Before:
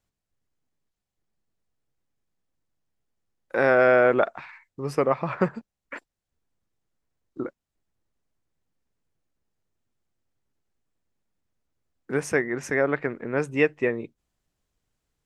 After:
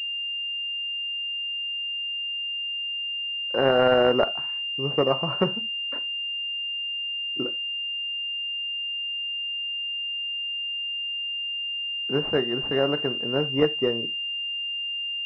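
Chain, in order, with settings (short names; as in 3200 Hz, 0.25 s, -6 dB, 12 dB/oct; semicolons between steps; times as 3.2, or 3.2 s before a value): non-linear reverb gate 0.11 s falling, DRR 10 dB; pulse-width modulation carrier 2800 Hz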